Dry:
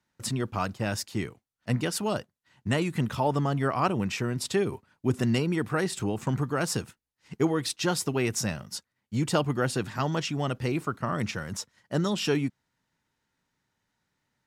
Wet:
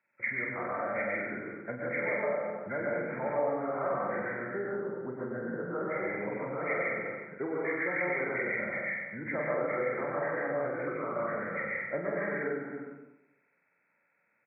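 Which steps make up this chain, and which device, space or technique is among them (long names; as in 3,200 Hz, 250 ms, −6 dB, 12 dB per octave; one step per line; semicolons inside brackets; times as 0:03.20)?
0:04.33–0:05.92: high-frequency loss of the air 190 metres
reverse bouncing-ball delay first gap 40 ms, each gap 1.3×, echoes 5
dense smooth reverb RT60 0.92 s, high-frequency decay 0.6×, pre-delay 105 ms, DRR −4 dB
hearing aid with frequency lowering (hearing-aid frequency compression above 1,300 Hz 4 to 1; downward compressor 3 to 1, threshold −27 dBFS, peak gain reduction 10.5 dB; loudspeaker in its box 250–6,300 Hz, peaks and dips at 270 Hz −3 dB, 550 Hz +10 dB, 2,300 Hz +7 dB)
level −6 dB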